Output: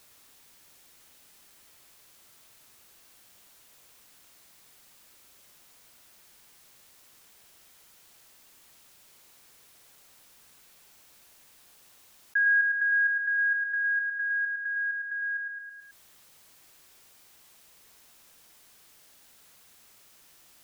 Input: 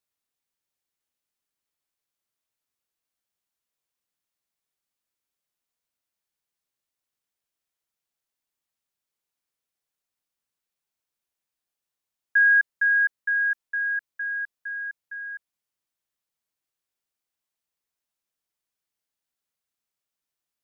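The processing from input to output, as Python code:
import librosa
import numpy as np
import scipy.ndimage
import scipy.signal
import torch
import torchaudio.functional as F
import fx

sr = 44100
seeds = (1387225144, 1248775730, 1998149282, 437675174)

p1 = x + fx.echo_feedback(x, sr, ms=108, feedback_pct=40, wet_db=-7, dry=0)
p2 = fx.env_flatten(p1, sr, amount_pct=50)
y = p2 * librosa.db_to_amplitude(-8.0)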